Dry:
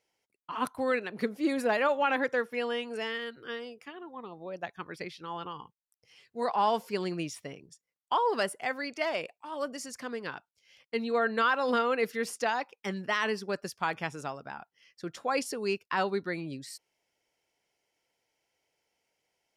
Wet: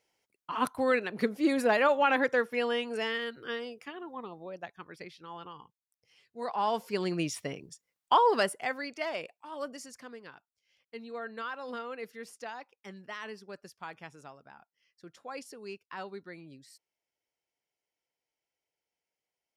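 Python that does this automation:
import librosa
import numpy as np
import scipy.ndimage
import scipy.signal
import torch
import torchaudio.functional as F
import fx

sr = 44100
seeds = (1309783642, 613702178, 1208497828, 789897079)

y = fx.gain(x, sr, db=fx.line((4.19, 2.0), (4.75, -6.0), (6.4, -6.0), (7.38, 5.0), (8.13, 5.0), (8.97, -3.5), (9.69, -3.5), (10.32, -12.0)))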